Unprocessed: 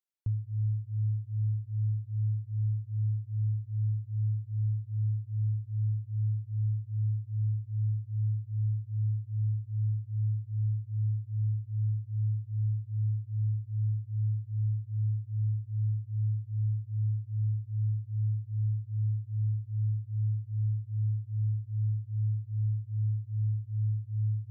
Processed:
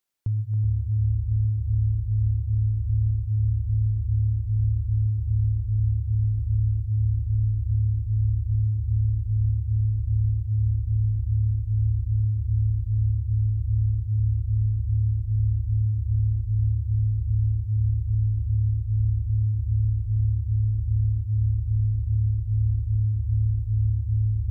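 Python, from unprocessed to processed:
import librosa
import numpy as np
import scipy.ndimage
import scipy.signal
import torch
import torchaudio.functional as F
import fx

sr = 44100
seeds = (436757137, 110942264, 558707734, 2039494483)

p1 = fx.over_compress(x, sr, threshold_db=-34.0, ratio=-1.0)
p2 = x + F.gain(torch.from_numpy(p1), 2.0).numpy()
p3 = fx.echo_pitch(p2, sr, ms=250, semitones=-7, count=2, db_per_echo=-6.0)
p4 = fx.echo_thinned(p3, sr, ms=276, feedback_pct=30, hz=220.0, wet_db=-5.5)
y = F.gain(torch.from_numpy(p4), 1.0).numpy()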